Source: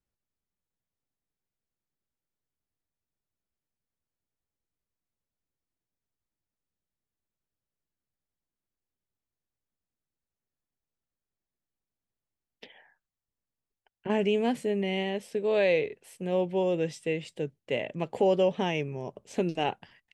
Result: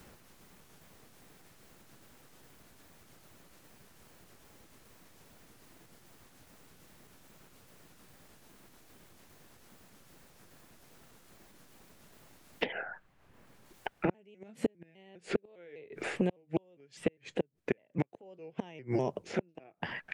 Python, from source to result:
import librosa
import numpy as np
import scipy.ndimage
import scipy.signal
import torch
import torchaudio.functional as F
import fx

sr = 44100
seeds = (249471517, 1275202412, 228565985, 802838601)

y = fx.pitch_trill(x, sr, semitones=-2.5, every_ms=202)
y = fx.gate_flip(y, sr, shuts_db=-21.0, range_db=-41)
y = fx.band_squash(y, sr, depth_pct=100)
y = y * librosa.db_to_amplitude(7.0)